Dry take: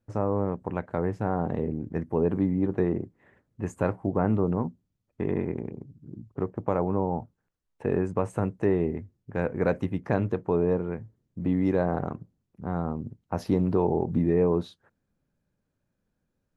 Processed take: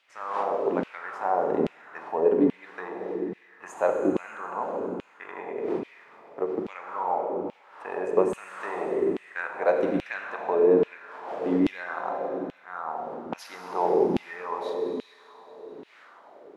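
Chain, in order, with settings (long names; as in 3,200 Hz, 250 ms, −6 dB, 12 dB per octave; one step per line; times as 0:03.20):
wind on the microphone 460 Hz −43 dBFS
four-comb reverb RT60 3.2 s, combs from 33 ms, DRR 2.5 dB
auto-filter high-pass saw down 1.2 Hz 260–2,900 Hz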